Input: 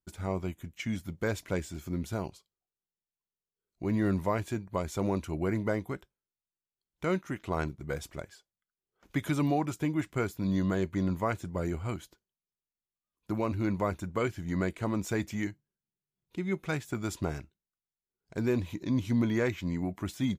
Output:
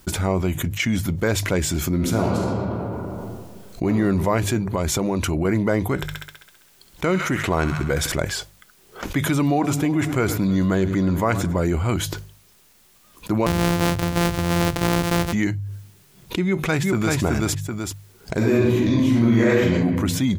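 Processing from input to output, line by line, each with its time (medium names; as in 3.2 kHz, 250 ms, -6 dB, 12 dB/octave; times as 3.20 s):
1.94–3.88 s: reverb throw, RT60 1.5 s, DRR 0 dB
4.61–5.45 s: compression, threshold -33 dBFS
5.95–8.12 s: feedback echo behind a high-pass 66 ms, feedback 64%, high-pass 1.5 kHz, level -9 dB
9.32–11.60 s: multi-head delay 105 ms, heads first and third, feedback 56%, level -21 dB
13.46–15.33 s: sorted samples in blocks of 256 samples
16.45–17.16 s: echo throw 380 ms, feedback 10%, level -2.5 dB
18.37–19.74 s: reverb throw, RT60 0.92 s, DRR -8 dB
whole clip: de-hum 50.24 Hz, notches 3; level flattener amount 70%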